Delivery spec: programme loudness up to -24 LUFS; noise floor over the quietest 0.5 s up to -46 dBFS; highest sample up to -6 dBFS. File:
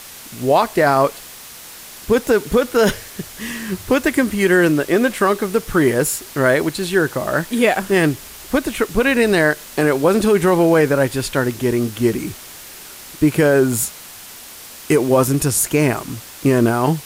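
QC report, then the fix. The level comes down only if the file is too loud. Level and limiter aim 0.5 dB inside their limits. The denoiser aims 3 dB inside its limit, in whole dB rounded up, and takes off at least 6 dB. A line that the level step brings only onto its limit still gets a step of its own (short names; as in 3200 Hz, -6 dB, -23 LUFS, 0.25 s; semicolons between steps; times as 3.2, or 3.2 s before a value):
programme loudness -17.0 LUFS: fail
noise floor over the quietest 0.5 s -37 dBFS: fail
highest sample -4.0 dBFS: fail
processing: denoiser 6 dB, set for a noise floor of -37 dBFS; gain -7.5 dB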